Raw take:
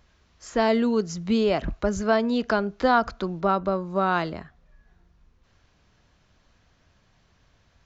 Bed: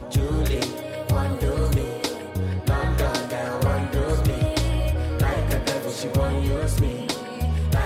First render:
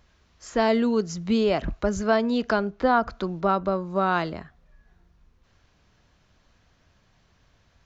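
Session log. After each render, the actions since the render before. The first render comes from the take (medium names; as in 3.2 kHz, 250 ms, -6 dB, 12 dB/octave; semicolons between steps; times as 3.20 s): 2.70–3.11 s: treble shelf 3.4 kHz -11 dB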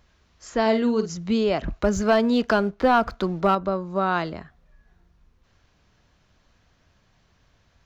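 0.61–1.17 s: doubling 50 ms -10 dB; 1.78–3.55 s: waveshaping leveller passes 1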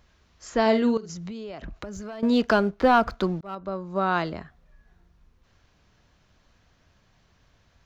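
0.97–2.23 s: compression 12:1, threshold -33 dBFS; 3.41–4.37 s: fade in equal-power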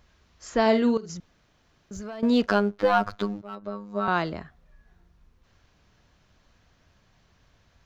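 1.20–1.91 s: room tone; 2.46–4.08 s: robot voice 102 Hz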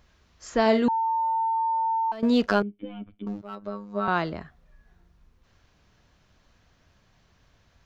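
0.88–2.12 s: bleep 901 Hz -22 dBFS; 2.62–3.27 s: cascade formant filter i; 3.85–4.41 s: distance through air 55 m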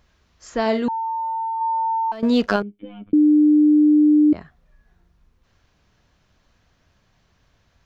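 1.61–2.56 s: gain +3.5 dB; 3.13–4.33 s: bleep 300 Hz -10.5 dBFS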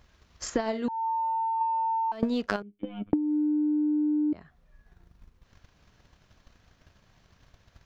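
transient shaper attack +11 dB, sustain -3 dB; compression 4:1, threshold -27 dBFS, peak gain reduction 19 dB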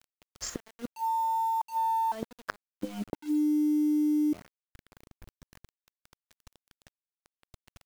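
inverted gate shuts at -21 dBFS, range -28 dB; bit crusher 8-bit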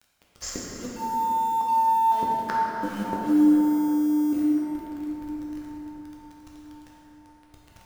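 feedback echo behind a band-pass 1040 ms, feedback 59%, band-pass 1.1 kHz, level -22 dB; plate-style reverb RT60 4.6 s, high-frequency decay 0.45×, DRR -6 dB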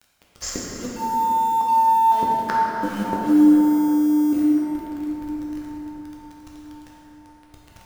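trim +4.5 dB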